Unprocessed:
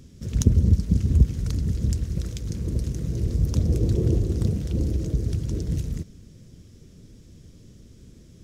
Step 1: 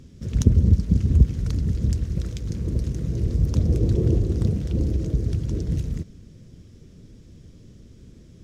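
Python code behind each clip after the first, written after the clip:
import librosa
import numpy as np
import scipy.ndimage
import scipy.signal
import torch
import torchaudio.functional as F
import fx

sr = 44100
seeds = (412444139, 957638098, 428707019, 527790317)

y = fx.high_shelf(x, sr, hz=6000.0, db=-9.0)
y = F.gain(torch.from_numpy(y), 1.5).numpy()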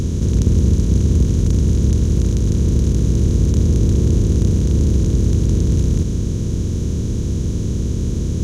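y = fx.bin_compress(x, sr, power=0.2)
y = F.gain(torch.from_numpy(y), -3.5).numpy()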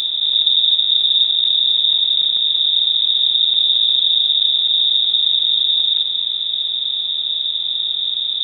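y = fx.freq_invert(x, sr, carrier_hz=3700)
y = F.gain(torch.from_numpy(y), -2.5).numpy()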